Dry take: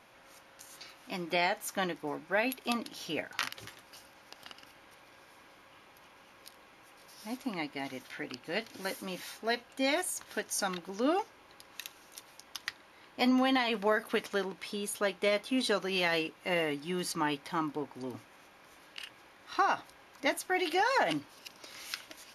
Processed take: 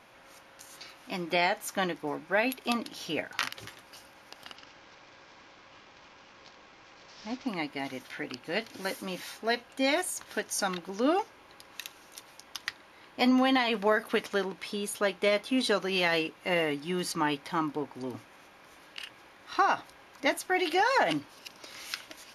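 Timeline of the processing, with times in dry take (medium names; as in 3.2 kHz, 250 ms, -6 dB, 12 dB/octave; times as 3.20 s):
4.56–7.48 s: CVSD coder 32 kbps
whole clip: treble shelf 9.5 kHz -4 dB; trim +3 dB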